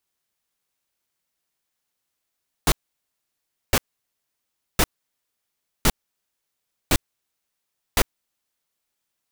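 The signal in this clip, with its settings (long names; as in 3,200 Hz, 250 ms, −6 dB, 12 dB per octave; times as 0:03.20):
noise bursts pink, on 0.05 s, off 1.01 s, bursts 6, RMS −16.5 dBFS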